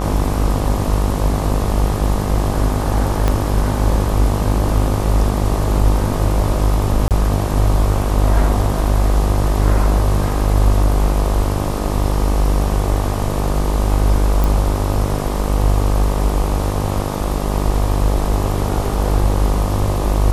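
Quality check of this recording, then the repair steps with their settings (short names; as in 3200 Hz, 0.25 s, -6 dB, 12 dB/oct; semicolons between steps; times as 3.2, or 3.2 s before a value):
buzz 50 Hz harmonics 25 -21 dBFS
3.28 pop -5 dBFS
7.08–7.11 gap 28 ms
14.44 pop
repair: de-click; de-hum 50 Hz, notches 25; interpolate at 7.08, 28 ms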